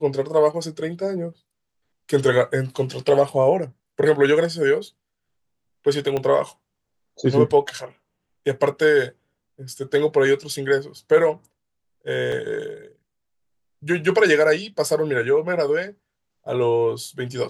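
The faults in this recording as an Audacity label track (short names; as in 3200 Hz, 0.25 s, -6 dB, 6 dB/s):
6.170000	6.170000	pop -13 dBFS
12.320000	12.320000	gap 3.2 ms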